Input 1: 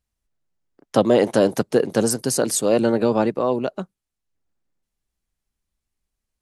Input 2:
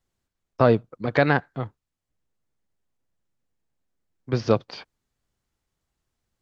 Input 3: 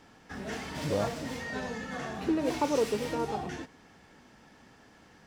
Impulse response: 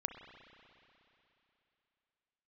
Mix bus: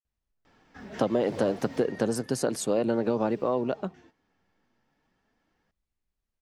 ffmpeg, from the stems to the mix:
-filter_complex "[0:a]lowpass=f=2900:p=1,adelay=50,volume=0.668[s0];[2:a]equalizer=f=10000:t=o:w=0.84:g=-12.5,flanger=delay=1.5:depth=9.7:regen=65:speed=0.38:shape=triangular,adelay=450,volume=0.944,afade=t=out:st=1.71:d=0.6:silence=0.237137[s1];[s0][s1]amix=inputs=2:normalize=0,acompressor=threshold=0.0891:ratio=6"

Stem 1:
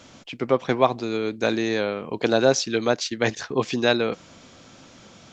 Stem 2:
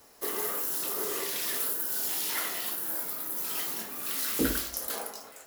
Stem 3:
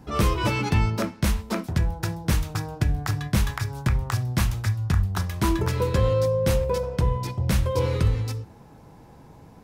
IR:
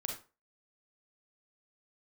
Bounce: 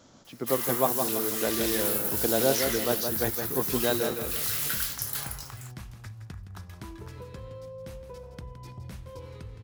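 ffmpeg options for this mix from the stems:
-filter_complex "[0:a]equalizer=f=2500:t=o:w=0.87:g=-10.5,volume=0.473,asplit=2[s0][s1];[s1]volume=0.501[s2];[1:a]highpass=1300,adelay=250,volume=1.26[s3];[2:a]acompressor=threshold=0.0355:ratio=6,adelay=1400,volume=0.299,asplit=2[s4][s5];[s5]volume=0.282[s6];[s2][s6]amix=inputs=2:normalize=0,aecho=0:1:166|332|498|664|830:1|0.38|0.144|0.0549|0.0209[s7];[s0][s3][s4][s7]amix=inputs=4:normalize=0"

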